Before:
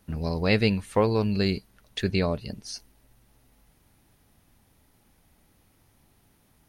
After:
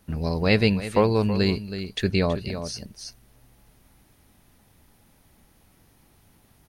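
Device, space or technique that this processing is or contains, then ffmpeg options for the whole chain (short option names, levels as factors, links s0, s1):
ducked delay: -filter_complex "[0:a]asplit=3[s0][s1][s2];[s1]adelay=325,volume=0.708[s3];[s2]apad=whole_len=309157[s4];[s3][s4]sidechaincompress=threshold=0.0355:ratio=8:attack=43:release=1180[s5];[s0][s5]amix=inputs=2:normalize=0,volume=1.33"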